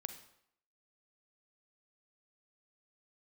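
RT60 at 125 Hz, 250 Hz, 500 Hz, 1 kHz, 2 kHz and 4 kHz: 0.60 s, 0.70 s, 0.70 s, 0.70 s, 0.65 s, 0.60 s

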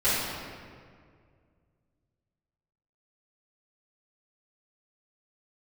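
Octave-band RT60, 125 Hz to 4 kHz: 2.9 s, 2.4 s, 2.2 s, 1.9 s, 1.7 s, 1.3 s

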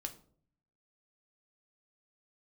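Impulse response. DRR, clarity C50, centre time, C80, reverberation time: 5.0 dB, 14.0 dB, 7 ms, 17.5 dB, 0.55 s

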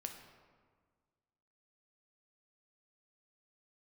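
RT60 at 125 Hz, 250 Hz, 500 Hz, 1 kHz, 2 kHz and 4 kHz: 2.0 s, 1.9 s, 1.7 s, 1.6 s, 1.3 s, 0.95 s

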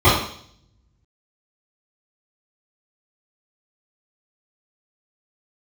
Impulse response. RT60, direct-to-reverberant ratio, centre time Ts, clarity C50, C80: 0.60 s, -14.0 dB, 48 ms, 3.0 dB, 7.5 dB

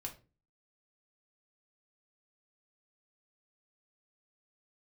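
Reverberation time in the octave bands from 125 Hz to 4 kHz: 0.50 s, 0.50 s, 0.40 s, 0.30 s, 0.25 s, 0.25 s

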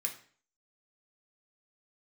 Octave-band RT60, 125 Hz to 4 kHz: 0.50 s, 0.50 s, 0.50 s, 0.45 s, 0.45 s, 0.45 s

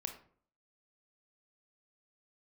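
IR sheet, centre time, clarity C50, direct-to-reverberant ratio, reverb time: 14 ms, 9.0 dB, 5.0 dB, 0.55 s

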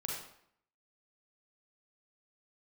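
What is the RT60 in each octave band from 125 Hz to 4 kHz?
0.65 s, 0.70 s, 0.65 s, 0.70 s, 0.60 s, 0.55 s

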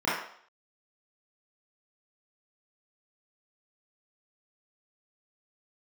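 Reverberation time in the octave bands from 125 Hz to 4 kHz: 0.35 s, 0.45 s, 0.60 s, 0.60 s, 0.55 s, 0.60 s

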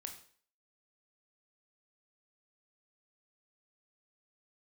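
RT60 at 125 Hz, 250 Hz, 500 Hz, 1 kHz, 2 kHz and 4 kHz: 0.40 s, 0.45 s, 0.50 s, 0.50 s, 0.50 s, 0.50 s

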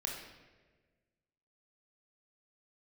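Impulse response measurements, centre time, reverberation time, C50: 52 ms, 1.4 s, 2.5 dB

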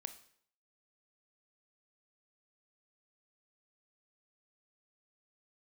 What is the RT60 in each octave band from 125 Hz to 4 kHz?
0.60 s, 0.60 s, 0.60 s, 0.60 s, 0.55 s, 0.55 s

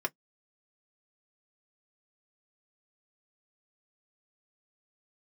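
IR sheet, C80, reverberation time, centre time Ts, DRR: 60.0 dB, no single decay rate, 4 ms, 0.5 dB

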